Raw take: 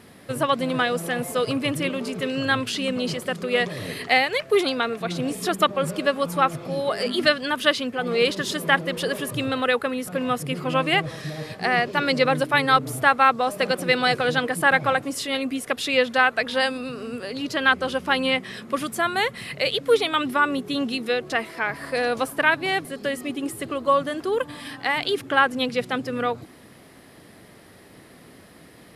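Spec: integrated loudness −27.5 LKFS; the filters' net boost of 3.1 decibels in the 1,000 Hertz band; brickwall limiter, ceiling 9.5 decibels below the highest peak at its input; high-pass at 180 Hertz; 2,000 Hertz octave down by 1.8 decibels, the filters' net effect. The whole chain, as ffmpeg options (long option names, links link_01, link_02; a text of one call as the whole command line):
ffmpeg -i in.wav -af "highpass=180,equalizer=frequency=1000:width_type=o:gain=5.5,equalizer=frequency=2000:width_type=o:gain=-4.5,volume=-2dB,alimiter=limit=-14.5dB:level=0:latency=1" out.wav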